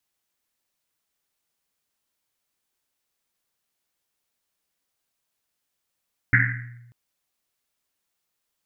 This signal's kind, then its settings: Risset drum length 0.59 s, pitch 120 Hz, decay 1.17 s, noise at 1800 Hz, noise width 590 Hz, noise 55%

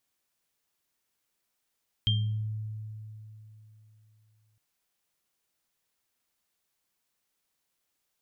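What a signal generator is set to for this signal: sine partials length 2.51 s, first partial 108 Hz, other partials 199/3180 Hz, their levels -15/1 dB, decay 3.38 s, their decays 1.15/0.38 s, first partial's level -23 dB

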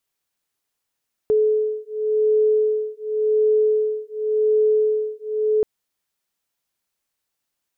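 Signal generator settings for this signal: beating tones 429 Hz, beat 0.9 Hz, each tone -19.5 dBFS 4.33 s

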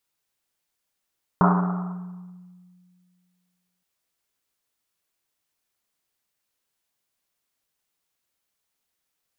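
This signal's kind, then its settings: Risset drum length 2.42 s, pitch 180 Hz, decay 2.24 s, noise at 1000 Hz, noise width 680 Hz, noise 35%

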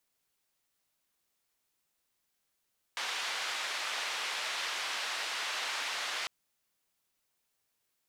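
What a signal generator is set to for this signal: noise band 810–3700 Hz, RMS -36 dBFS 3.30 s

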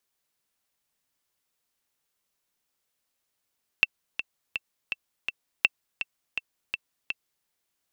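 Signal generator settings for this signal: metronome 165 bpm, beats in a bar 5, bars 2, 2680 Hz, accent 10.5 dB -5 dBFS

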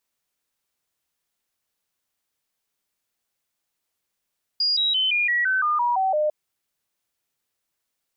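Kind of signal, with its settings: stepped sine 4850 Hz down, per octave 3, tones 10, 0.17 s, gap 0.00 s -18.5 dBFS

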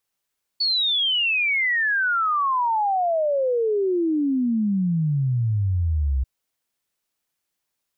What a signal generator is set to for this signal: log sweep 4500 Hz -> 63 Hz 5.64 s -18.5 dBFS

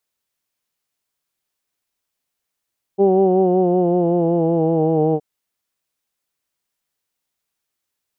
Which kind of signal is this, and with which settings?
formant vowel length 2.22 s, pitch 194 Hz, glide -4 st, vibrato depth 0.45 st, F1 420 Hz, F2 770 Hz, F3 2900 Hz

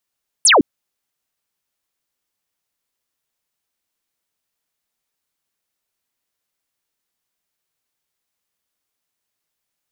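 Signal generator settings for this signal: laser zap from 11000 Hz, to 230 Hz, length 0.16 s sine, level -7.5 dB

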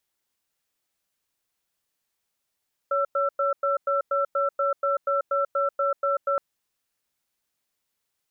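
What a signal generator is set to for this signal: cadence 560 Hz, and 1340 Hz, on 0.14 s, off 0.10 s, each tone -23.5 dBFS 3.47 s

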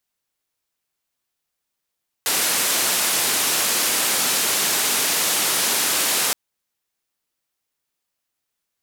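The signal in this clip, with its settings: noise band 200–13000 Hz, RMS -20.5 dBFS 4.07 s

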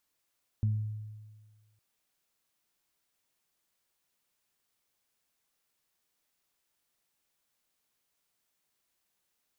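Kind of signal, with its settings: additive tone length 1.16 s, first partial 107 Hz, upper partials -12 dB, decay 1.53 s, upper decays 0.52 s, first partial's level -23.5 dB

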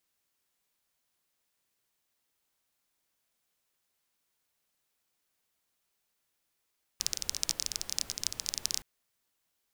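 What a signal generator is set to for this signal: rain from filtered ticks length 1.82 s, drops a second 20, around 5500 Hz, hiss -14.5 dB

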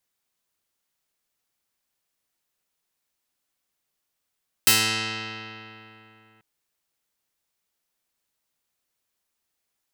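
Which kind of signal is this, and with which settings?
plucked string A2, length 1.74 s, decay 3.20 s, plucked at 0.19, medium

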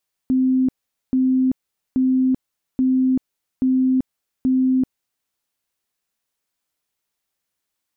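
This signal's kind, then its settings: tone bursts 259 Hz, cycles 100, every 0.83 s, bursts 6, -14 dBFS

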